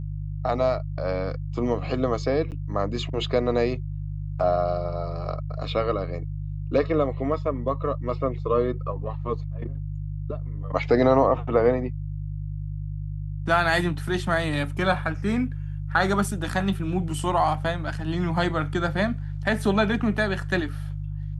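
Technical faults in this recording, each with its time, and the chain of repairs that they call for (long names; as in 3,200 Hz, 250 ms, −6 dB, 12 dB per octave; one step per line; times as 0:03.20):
mains hum 50 Hz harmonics 3 −31 dBFS
0:02.51–0:02.52: drop-out 8.5 ms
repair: hum removal 50 Hz, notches 3
repair the gap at 0:02.51, 8.5 ms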